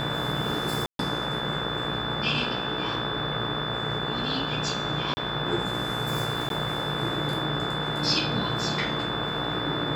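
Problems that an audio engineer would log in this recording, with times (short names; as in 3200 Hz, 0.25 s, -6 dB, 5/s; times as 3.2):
buzz 60 Hz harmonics 29 -34 dBFS
tone 3500 Hz -32 dBFS
0.86–0.99 gap 0.132 s
5.14–5.17 gap 30 ms
6.49–6.5 gap 12 ms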